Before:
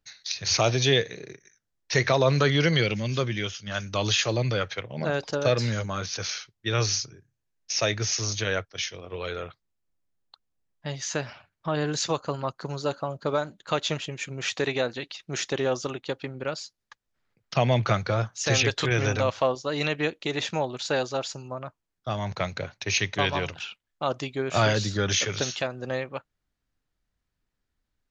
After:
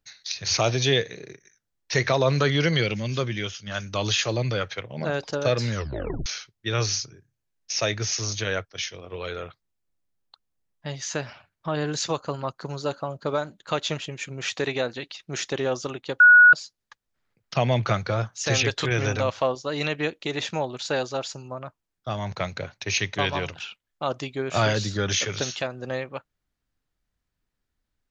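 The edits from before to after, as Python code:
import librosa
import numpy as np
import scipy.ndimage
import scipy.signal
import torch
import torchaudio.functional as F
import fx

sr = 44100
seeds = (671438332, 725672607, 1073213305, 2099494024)

y = fx.edit(x, sr, fx.tape_stop(start_s=5.74, length_s=0.52),
    fx.bleep(start_s=16.2, length_s=0.33, hz=1460.0, db=-8.5), tone=tone)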